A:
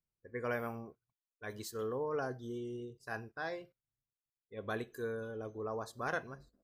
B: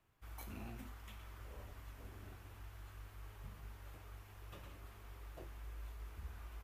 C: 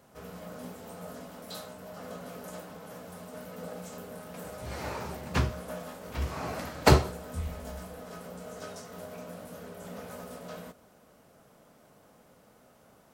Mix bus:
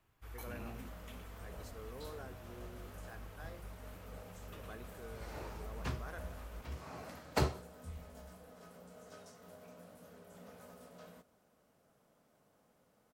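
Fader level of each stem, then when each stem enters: -13.0 dB, +2.0 dB, -12.5 dB; 0.00 s, 0.00 s, 0.50 s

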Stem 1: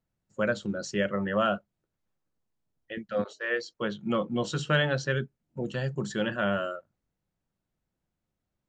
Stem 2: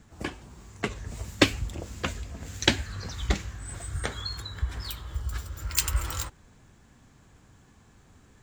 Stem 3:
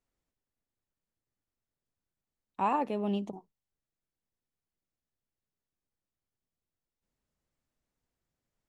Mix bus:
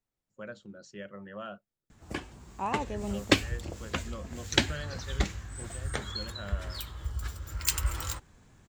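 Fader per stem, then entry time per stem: -15.5 dB, -2.5 dB, -4.0 dB; 0.00 s, 1.90 s, 0.00 s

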